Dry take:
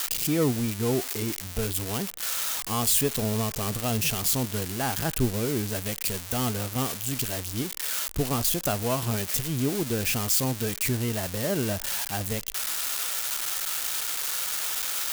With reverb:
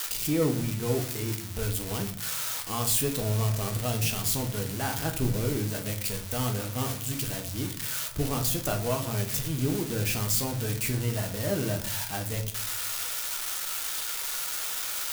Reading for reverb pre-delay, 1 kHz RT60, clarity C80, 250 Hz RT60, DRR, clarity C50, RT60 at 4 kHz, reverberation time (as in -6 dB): 6 ms, 0.45 s, 15.5 dB, 0.95 s, 3.0 dB, 11.0 dB, 0.35 s, 0.50 s